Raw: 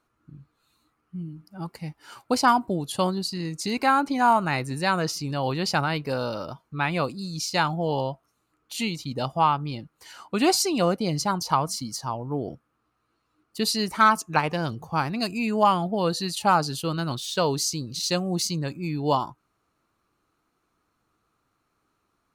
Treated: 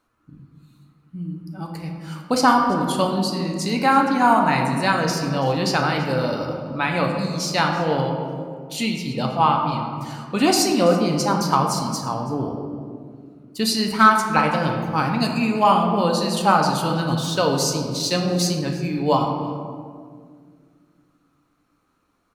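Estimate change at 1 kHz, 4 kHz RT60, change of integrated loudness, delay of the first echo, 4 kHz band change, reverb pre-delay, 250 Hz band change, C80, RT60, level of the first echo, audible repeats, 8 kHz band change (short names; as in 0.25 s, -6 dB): +4.5 dB, 1.1 s, +4.5 dB, 0.33 s, +3.5 dB, 4 ms, +6.0 dB, 5.5 dB, 2.0 s, -19.0 dB, 1, +3.0 dB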